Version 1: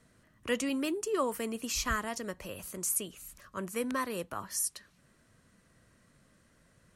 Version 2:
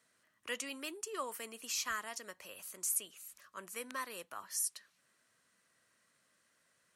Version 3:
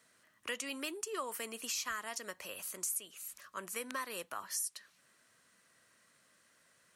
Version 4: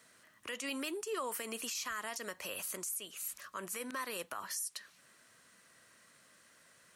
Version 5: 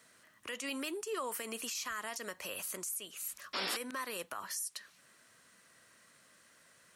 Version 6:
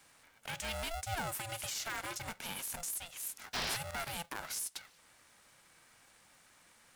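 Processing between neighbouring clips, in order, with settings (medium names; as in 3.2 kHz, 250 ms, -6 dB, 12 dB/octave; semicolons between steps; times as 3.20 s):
high-pass 1.3 kHz 6 dB/octave; trim -3 dB
compression 3:1, threshold -42 dBFS, peak gain reduction 10 dB; trim +5.5 dB
peak limiter -34.5 dBFS, peak gain reduction 11.5 dB; trim +5 dB
painted sound noise, 3.53–3.77 s, 230–5600 Hz -37 dBFS
polarity switched at an audio rate 340 Hz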